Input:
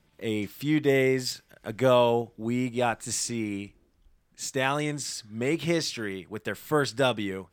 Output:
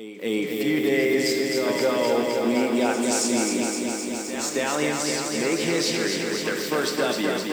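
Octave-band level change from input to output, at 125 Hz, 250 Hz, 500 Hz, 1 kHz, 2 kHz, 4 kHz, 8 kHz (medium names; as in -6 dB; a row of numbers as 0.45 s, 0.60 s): -5.0 dB, +5.5 dB, +3.5 dB, +1.5 dB, +5.0 dB, +6.0 dB, +7.5 dB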